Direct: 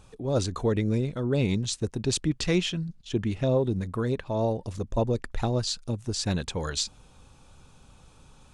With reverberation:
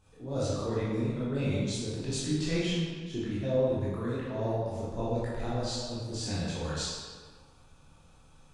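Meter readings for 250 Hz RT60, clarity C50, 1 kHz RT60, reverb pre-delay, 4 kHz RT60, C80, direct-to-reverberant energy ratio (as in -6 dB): 1.5 s, -2.5 dB, 1.7 s, 14 ms, 1.1 s, 0.5 dB, -10.0 dB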